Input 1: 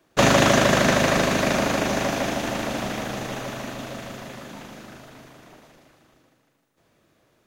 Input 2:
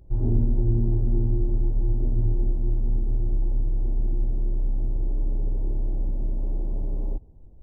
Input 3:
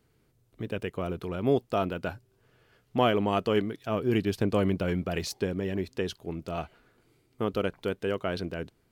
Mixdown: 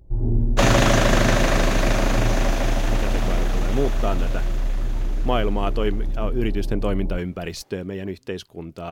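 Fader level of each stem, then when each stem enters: -1.5 dB, +1.0 dB, +1.0 dB; 0.40 s, 0.00 s, 2.30 s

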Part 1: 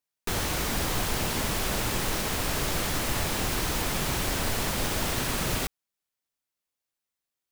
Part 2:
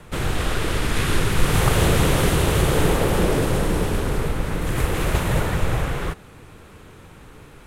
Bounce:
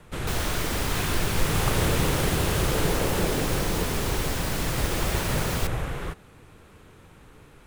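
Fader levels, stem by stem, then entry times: -2.0 dB, -6.5 dB; 0.00 s, 0.00 s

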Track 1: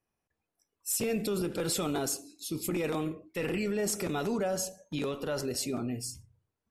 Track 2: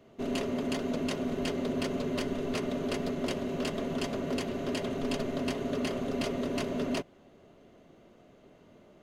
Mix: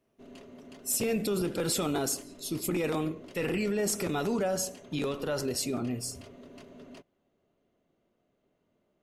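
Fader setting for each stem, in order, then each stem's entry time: +1.5 dB, -17.5 dB; 0.00 s, 0.00 s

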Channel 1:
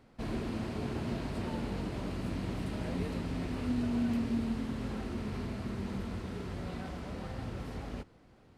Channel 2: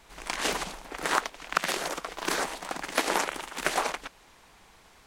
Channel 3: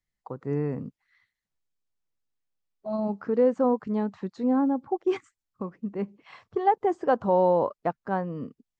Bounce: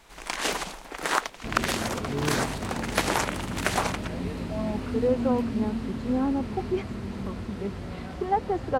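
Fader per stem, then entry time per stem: +3.0 dB, +1.0 dB, -3.0 dB; 1.25 s, 0.00 s, 1.65 s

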